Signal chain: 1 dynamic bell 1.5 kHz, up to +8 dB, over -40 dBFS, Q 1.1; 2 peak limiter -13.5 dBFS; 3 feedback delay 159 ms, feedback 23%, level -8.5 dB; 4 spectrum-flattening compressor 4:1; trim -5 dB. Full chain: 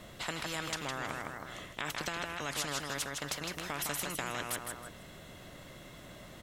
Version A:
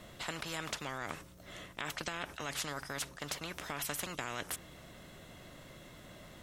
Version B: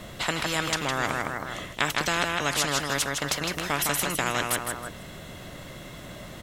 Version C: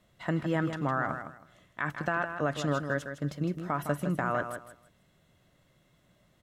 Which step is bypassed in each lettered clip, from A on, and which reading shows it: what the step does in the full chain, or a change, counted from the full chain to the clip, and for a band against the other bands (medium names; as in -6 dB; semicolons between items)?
3, loudness change -3.0 LU; 2, momentary loudness spread change +1 LU; 4, 8 kHz band -20.0 dB